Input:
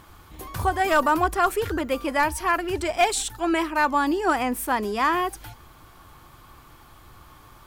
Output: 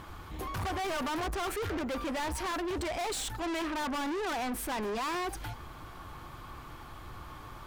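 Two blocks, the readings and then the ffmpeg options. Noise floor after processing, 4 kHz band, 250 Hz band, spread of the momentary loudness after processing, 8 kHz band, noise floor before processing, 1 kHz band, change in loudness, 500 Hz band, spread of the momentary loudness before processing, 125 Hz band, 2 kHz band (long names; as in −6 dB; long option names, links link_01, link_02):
−47 dBFS, −5.5 dB, −8.5 dB, 14 LU, −8.0 dB, −51 dBFS, −12.0 dB, −11.0 dB, −10.0 dB, 6 LU, −4.5 dB, −12.0 dB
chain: -af "asoftclip=type=hard:threshold=-29dB,highshelf=frequency=5900:gain=-10,asoftclip=type=tanh:threshold=-36dB,volume=4dB"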